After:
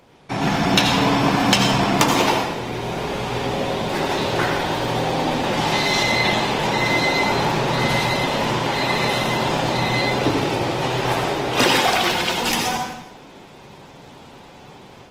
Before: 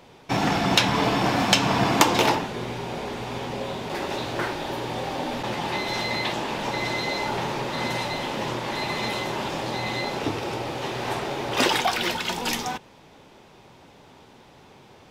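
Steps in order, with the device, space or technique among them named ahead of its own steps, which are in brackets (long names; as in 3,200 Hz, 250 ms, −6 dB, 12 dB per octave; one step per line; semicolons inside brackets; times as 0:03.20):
0:05.57–0:06.03: parametric band 6,200 Hz +5.5 dB 1.5 octaves
speakerphone in a meeting room (convolution reverb RT60 0.85 s, pre-delay 72 ms, DRR 3 dB; automatic gain control gain up to 7 dB; level −1 dB; Opus 20 kbit/s 48,000 Hz)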